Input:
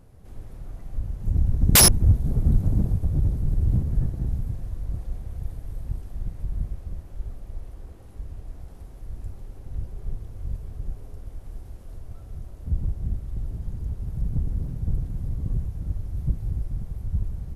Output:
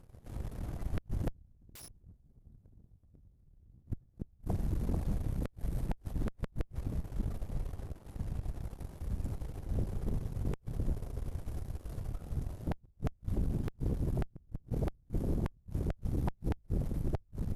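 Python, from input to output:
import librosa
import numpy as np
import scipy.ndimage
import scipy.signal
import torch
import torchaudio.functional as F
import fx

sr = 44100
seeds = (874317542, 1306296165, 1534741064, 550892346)

y = np.minimum(x, 2.0 * 10.0 ** (-9.0 / 20.0) - x)
y = fx.gate_flip(y, sr, shuts_db=-18.0, range_db=-33)
y = fx.cheby_harmonics(y, sr, harmonics=(8,), levels_db=(-7,), full_scale_db=-18.0)
y = F.gain(torch.from_numpy(y), -6.5).numpy()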